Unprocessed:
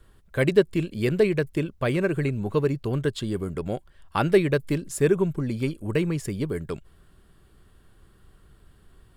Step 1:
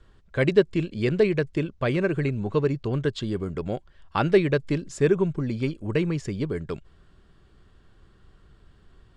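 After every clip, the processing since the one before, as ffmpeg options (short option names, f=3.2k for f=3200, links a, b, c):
-af "lowpass=f=6.8k:w=0.5412,lowpass=f=6.8k:w=1.3066"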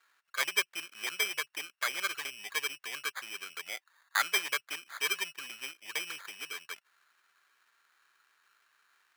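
-af "acrusher=samples=16:mix=1:aa=0.000001,highpass=f=1.6k:t=q:w=1.8,volume=-3dB"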